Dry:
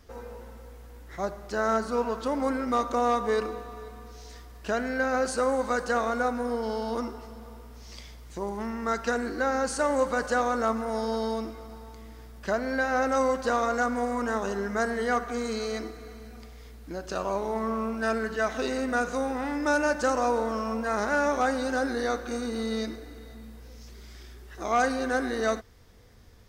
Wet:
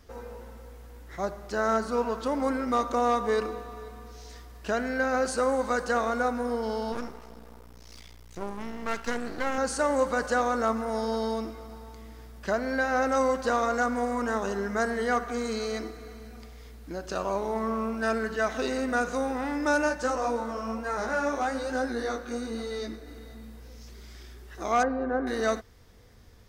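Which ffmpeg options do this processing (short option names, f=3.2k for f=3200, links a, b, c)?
-filter_complex "[0:a]asettb=1/sr,asplit=3[a][b][c];[a]atrim=end=6.924[d];[b]atrim=start=6.92:end=9.58,asetpts=PTS-STARTPTS,afade=t=in:d=0.004:c=qsin,afade=t=out:st=2.656:d=0.004:c=qsin,aeval=exprs='max(val(0),0)':c=same[e];[c]atrim=start=9.576[f];[d][e]acrossfade=d=0.004:c1=hsin:c2=qsin[g];[g][f]acrossfade=d=0.004:c1=qsin:c2=hsin,asplit=3[h][i][j];[h]afade=t=out:st=19.88:d=0.02[k];[i]flanger=delay=15.5:depth=5.9:speed=1.1,afade=t=in:st=19.88:d=0.02,afade=t=out:st=23.06:d=0.02[l];[j]afade=t=in:st=23.06:d=0.02[m];[k][l][m]amix=inputs=3:normalize=0,asettb=1/sr,asplit=3[n][o][p];[n]atrim=end=24.834[q];[o]atrim=start=24.83:end=25.27,asetpts=PTS-STARTPTS,afade=t=in:d=0.004:c=qsin,afade=t=out:st=0.436:d=0.004:c=qsin,lowpass=1.1k[r];[p]atrim=start=25.266[s];[q][r]acrossfade=d=0.004:c1=hsin:c2=qsin[t];[t][s]acrossfade=d=0.004:c1=qsin:c2=hsin"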